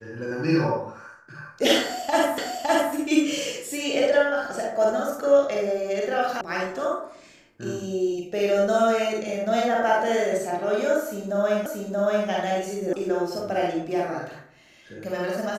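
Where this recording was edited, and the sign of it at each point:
2.38 repeat of the last 0.56 s
6.41 sound cut off
11.66 repeat of the last 0.63 s
12.93 sound cut off

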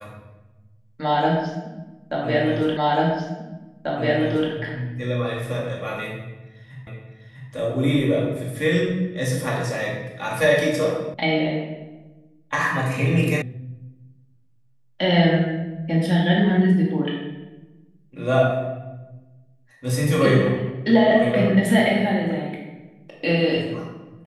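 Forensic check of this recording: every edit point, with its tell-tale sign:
2.77 repeat of the last 1.74 s
6.87 repeat of the last 0.65 s
11.14 sound cut off
13.42 sound cut off

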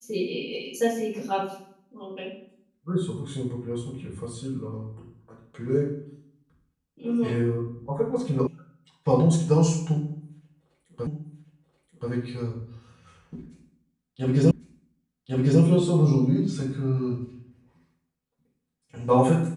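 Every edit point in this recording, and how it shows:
8.47 sound cut off
11.07 repeat of the last 1.03 s
14.51 repeat of the last 1.1 s

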